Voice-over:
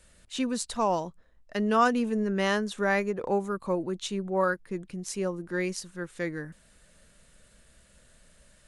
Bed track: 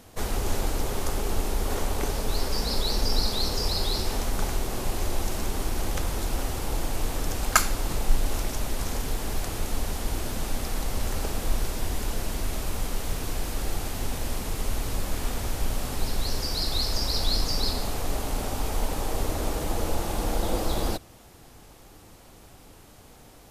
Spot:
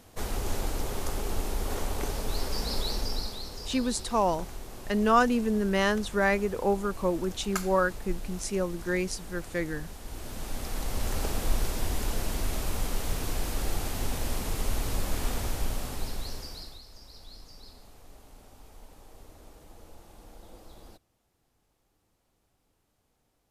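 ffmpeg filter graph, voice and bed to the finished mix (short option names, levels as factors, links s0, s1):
-filter_complex "[0:a]adelay=3350,volume=1.12[s0];[1:a]volume=2.51,afade=t=out:st=2.81:d=0.63:silence=0.354813,afade=t=in:st=10.02:d=1.22:silence=0.251189,afade=t=out:st=15.34:d=1.47:silence=0.0749894[s1];[s0][s1]amix=inputs=2:normalize=0"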